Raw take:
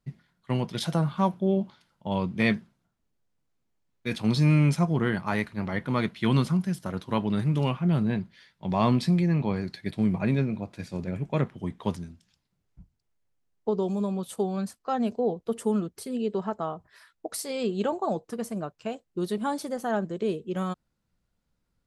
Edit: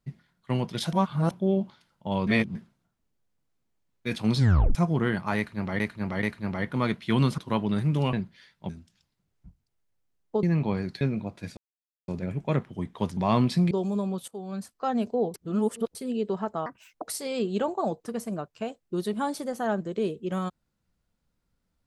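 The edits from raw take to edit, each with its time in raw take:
0.93–1.31 s: reverse
2.27–2.55 s: reverse
4.37 s: tape stop 0.38 s
5.37–5.80 s: loop, 3 plays
6.52–6.99 s: delete
7.74–8.12 s: delete
8.68–9.22 s: swap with 12.02–13.76 s
9.80–10.37 s: delete
10.93 s: insert silence 0.51 s
14.33–14.80 s: fade in linear, from -19.5 dB
15.39–16.00 s: reverse
16.71–17.26 s: speed 154%

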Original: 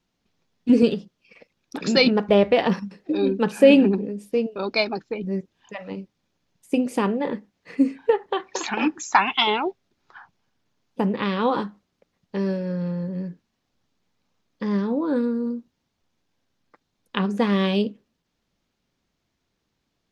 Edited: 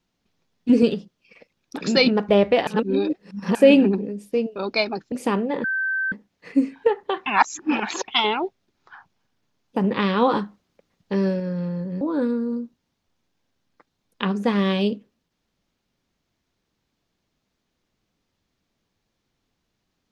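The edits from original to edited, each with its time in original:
2.67–3.55 s: reverse
5.12–6.83 s: delete
7.35 s: add tone 1.55 kHz -21 dBFS 0.48 s
8.49–9.31 s: reverse
11.07–12.63 s: gain +3 dB
13.24–14.95 s: delete

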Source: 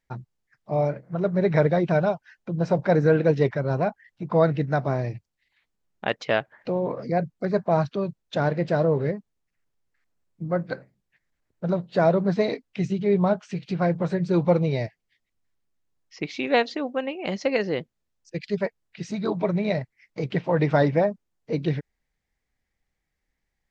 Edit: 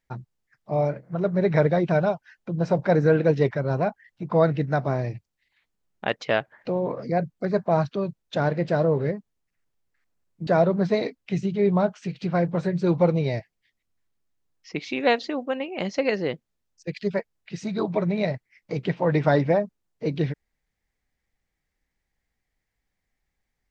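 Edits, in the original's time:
10.47–11.94 s: delete

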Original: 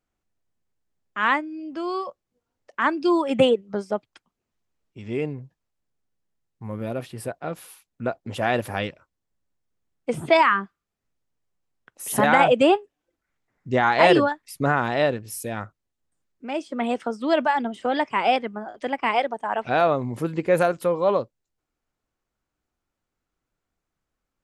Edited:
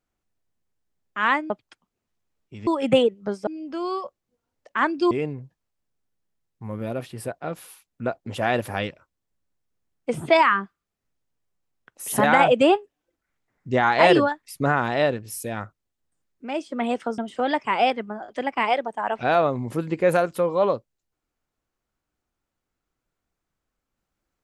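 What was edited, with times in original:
1.50–3.14 s: swap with 3.94–5.11 s
17.18–17.64 s: delete

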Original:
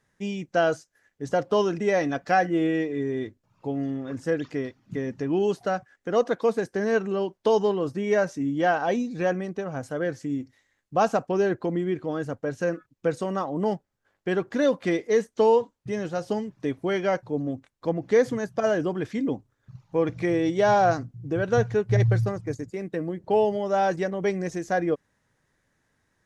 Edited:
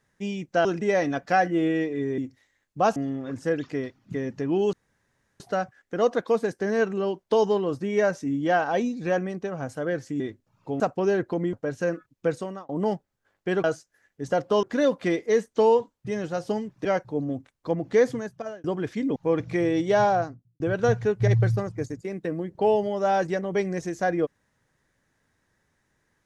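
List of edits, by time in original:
0.65–1.64 s: move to 14.44 s
3.17–3.77 s: swap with 10.34–11.12 s
5.54 s: insert room tone 0.67 s
11.85–12.33 s: delete
13.11–13.49 s: fade out
16.66–17.03 s: delete
18.20–18.82 s: fade out
19.34–19.85 s: delete
20.61–21.29 s: studio fade out

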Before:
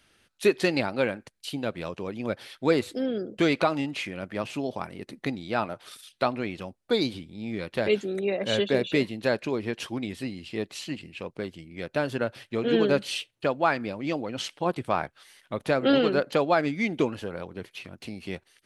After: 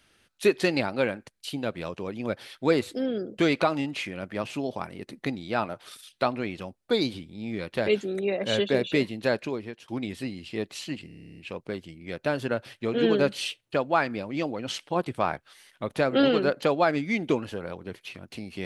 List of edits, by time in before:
9.38–9.88 s: fade out, to -23.5 dB
11.07 s: stutter 0.03 s, 11 plays

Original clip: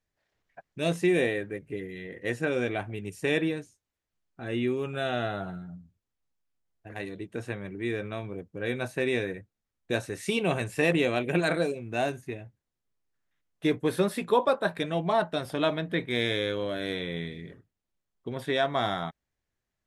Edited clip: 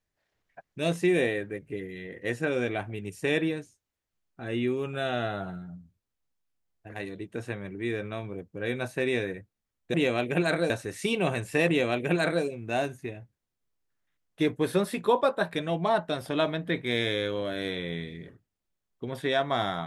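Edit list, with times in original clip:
10.92–11.68 s: copy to 9.94 s

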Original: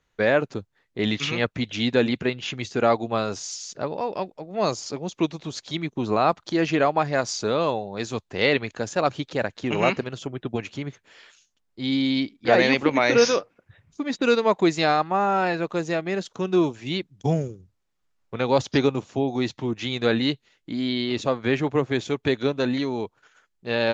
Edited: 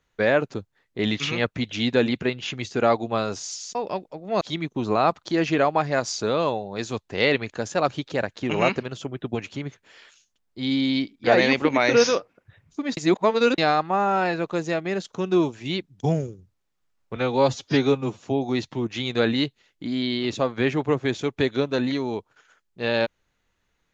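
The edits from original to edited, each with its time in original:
3.75–4.01 s: delete
4.67–5.62 s: delete
14.18–14.79 s: reverse
18.37–19.06 s: stretch 1.5×

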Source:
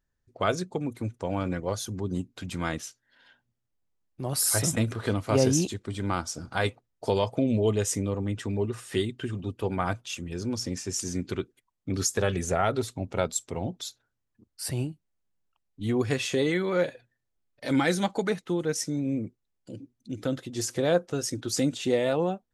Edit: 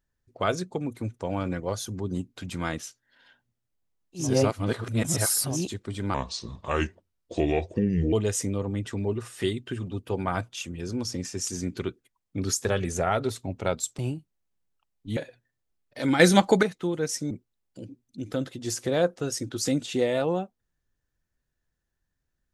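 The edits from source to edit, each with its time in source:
4.24–5.56 s: reverse, crossfade 0.24 s
6.14–7.65 s: speed 76%
13.51–14.72 s: delete
15.90–16.83 s: delete
17.86–18.29 s: gain +8.5 dB
18.97–19.22 s: delete

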